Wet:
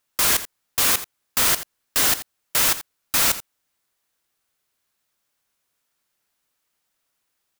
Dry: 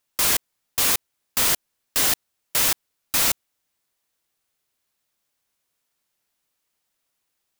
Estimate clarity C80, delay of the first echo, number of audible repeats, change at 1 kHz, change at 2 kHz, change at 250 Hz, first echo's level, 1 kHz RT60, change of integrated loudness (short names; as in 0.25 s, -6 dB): none, 84 ms, 1, +3.0 dB, +2.5 dB, +1.0 dB, -14.0 dB, none, +1.5 dB